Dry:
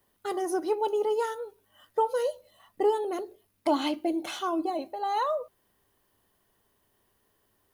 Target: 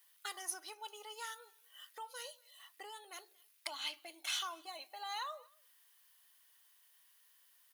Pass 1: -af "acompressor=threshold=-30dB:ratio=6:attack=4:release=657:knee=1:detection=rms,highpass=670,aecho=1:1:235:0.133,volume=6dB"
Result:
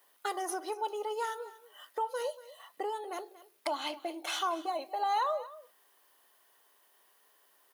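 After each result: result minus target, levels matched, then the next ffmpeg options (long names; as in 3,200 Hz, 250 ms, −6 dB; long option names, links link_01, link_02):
500 Hz band +10.0 dB; echo-to-direct +10.5 dB
-af "acompressor=threshold=-30dB:ratio=6:attack=4:release=657:knee=1:detection=rms,highpass=2100,aecho=1:1:235:0.133,volume=6dB"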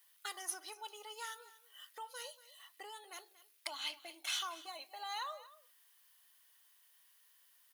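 echo-to-direct +10.5 dB
-af "acompressor=threshold=-30dB:ratio=6:attack=4:release=657:knee=1:detection=rms,highpass=2100,aecho=1:1:235:0.0398,volume=6dB"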